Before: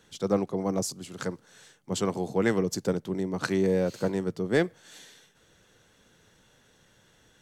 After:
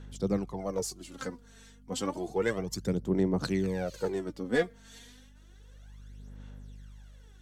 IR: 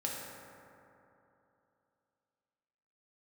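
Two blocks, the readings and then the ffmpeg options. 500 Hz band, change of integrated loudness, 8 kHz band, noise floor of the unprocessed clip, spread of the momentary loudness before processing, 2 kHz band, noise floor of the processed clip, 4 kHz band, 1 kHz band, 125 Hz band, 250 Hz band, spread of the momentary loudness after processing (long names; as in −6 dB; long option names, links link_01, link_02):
−4.0 dB, −3.5 dB, −4.0 dB, −63 dBFS, 10 LU, −3.0 dB, −55 dBFS, −3.0 dB, −4.0 dB, −2.5 dB, −3.5 dB, 22 LU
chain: -af "aeval=exprs='val(0)+0.00398*(sin(2*PI*50*n/s)+sin(2*PI*2*50*n/s)/2+sin(2*PI*3*50*n/s)/3+sin(2*PI*4*50*n/s)/4+sin(2*PI*5*50*n/s)/5)':channel_layout=same,aphaser=in_gain=1:out_gain=1:delay=4.4:decay=0.67:speed=0.31:type=sinusoidal,volume=-6dB"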